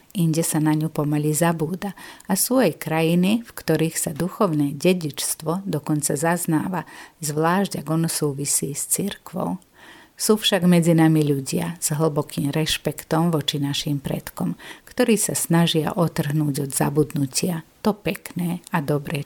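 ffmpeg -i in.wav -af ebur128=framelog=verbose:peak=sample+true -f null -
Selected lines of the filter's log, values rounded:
Integrated loudness:
  I:         -21.8 LUFS
  Threshold: -32.0 LUFS
Loudness range:
  LRA:         3.1 LU
  Threshold: -41.9 LUFS
  LRA low:   -23.4 LUFS
  LRA high:  -20.3 LUFS
Sample peak:
  Peak:       -6.0 dBFS
True peak:
  Peak:       -5.9 dBFS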